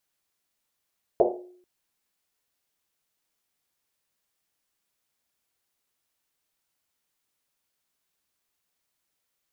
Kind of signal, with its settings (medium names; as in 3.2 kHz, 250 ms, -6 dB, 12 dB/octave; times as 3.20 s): Risset drum length 0.44 s, pitch 360 Hz, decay 0.70 s, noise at 550 Hz, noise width 370 Hz, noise 60%